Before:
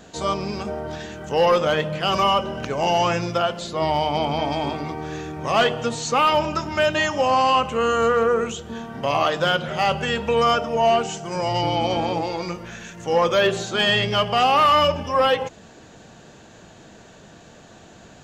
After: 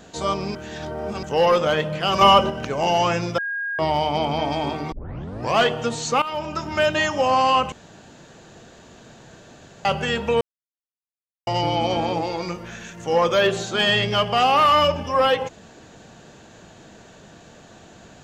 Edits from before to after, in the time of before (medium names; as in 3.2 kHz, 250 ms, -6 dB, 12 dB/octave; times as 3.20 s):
0.55–1.23 s: reverse
2.21–2.50 s: gain +6 dB
3.38–3.79 s: bleep 1.63 kHz -24 dBFS
4.92 s: tape start 0.63 s
6.22–6.75 s: fade in, from -16 dB
7.72–9.85 s: room tone
10.41–11.47 s: mute